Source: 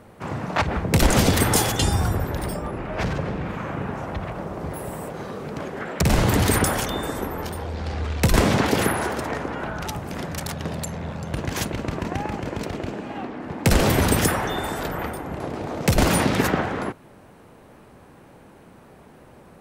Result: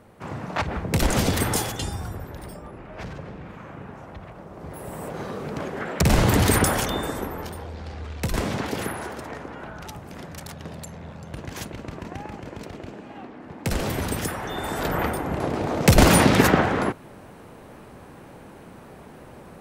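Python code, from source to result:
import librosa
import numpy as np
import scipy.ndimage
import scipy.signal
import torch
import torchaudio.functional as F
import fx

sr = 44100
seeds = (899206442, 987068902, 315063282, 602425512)

y = fx.gain(x, sr, db=fx.line((1.48, -4.0), (1.99, -10.5), (4.46, -10.5), (5.15, 0.5), (6.93, 0.5), (7.96, -8.0), (14.35, -8.0), (14.95, 4.0)))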